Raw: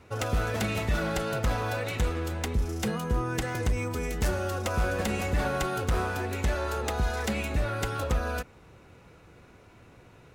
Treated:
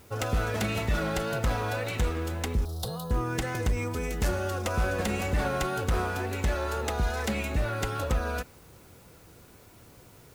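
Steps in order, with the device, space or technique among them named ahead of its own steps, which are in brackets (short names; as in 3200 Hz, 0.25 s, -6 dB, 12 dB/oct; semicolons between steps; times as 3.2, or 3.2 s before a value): plain cassette with noise reduction switched in (mismatched tape noise reduction decoder only; wow and flutter 29 cents; white noise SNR 30 dB); 2.65–3.11 EQ curve 160 Hz 0 dB, 220 Hz -20 dB, 590 Hz 0 dB, 1100 Hz -4 dB, 2300 Hz -26 dB, 3900 Hz +8 dB, 6400 Hz -7 dB, 11000 Hz +4 dB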